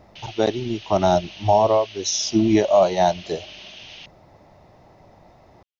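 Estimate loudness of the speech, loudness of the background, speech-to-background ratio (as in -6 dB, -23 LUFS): -20.0 LUFS, -39.0 LUFS, 19.0 dB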